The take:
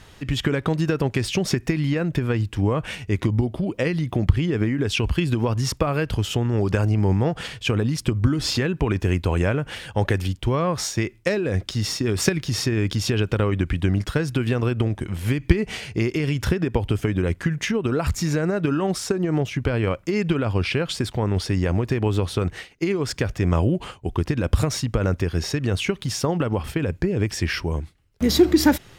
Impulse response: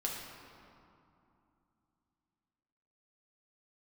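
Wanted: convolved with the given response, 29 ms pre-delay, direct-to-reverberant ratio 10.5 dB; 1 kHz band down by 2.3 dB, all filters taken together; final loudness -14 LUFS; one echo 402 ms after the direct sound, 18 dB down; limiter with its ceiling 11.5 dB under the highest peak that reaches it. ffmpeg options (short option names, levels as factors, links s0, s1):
-filter_complex "[0:a]equalizer=f=1000:t=o:g=-3,alimiter=limit=0.2:level=0:latency=1,aecho=1:1:402:0.126,asplit=2[s0][s1];[1:a]atrim=start_sample=2205,adelay=29[s2];[s1][s2]afir=irnorm=-1:irlink=0,volume=0.211[s3];[s0][s3]amix=inputs=2:normalize=0,volume=3.35"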